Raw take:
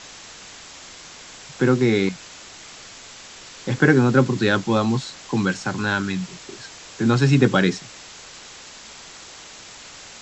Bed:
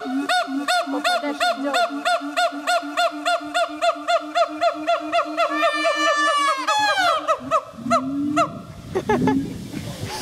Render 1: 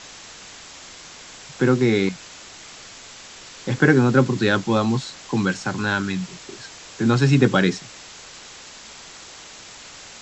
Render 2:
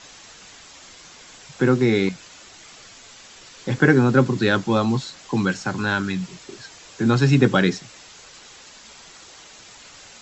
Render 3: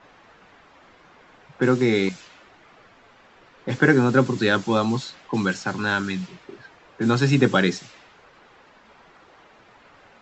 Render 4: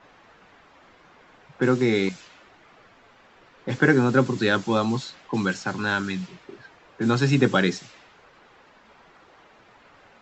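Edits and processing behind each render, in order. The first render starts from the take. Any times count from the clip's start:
no audible change
noise reduction 6 dB, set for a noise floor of -42 dBFS
bass shelf 150 Hz -6.5 dB; level-controlled noise filter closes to 1.3 kHz, open at -19 dBFS
trim -1.5 dB

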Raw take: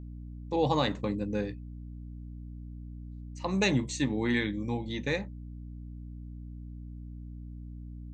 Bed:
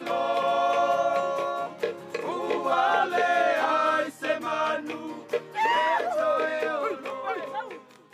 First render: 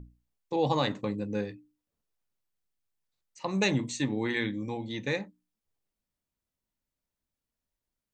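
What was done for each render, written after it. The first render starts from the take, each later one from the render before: hum notches 60/120/180/240/300 Hz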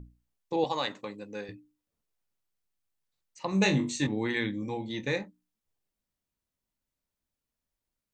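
0.64–1.49 s: high-pass 780 Hz 6 dB/octave; 3.50–4.07 s: flutter echo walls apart 3.5 m, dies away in 0.21 s; 4.60–5.23 s: doubling 23 ms -10 dB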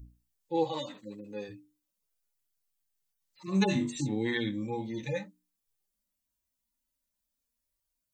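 harmonic-percussive separation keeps harmonic; treble shelf 4.6 kHz +11 dB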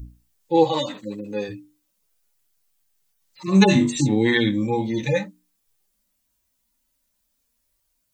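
trim +12 dB

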